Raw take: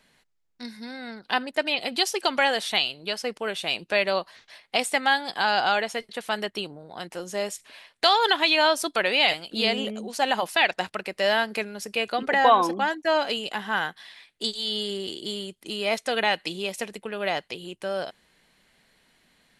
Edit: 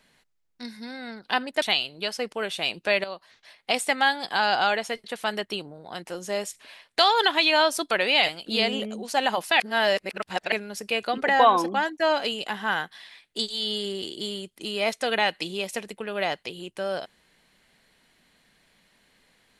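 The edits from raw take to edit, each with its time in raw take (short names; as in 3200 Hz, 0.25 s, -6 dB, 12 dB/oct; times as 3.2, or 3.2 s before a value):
1.62–2.67 cut
4.09–4.82 fade in, from -13 dB
10.65–11.57 reverse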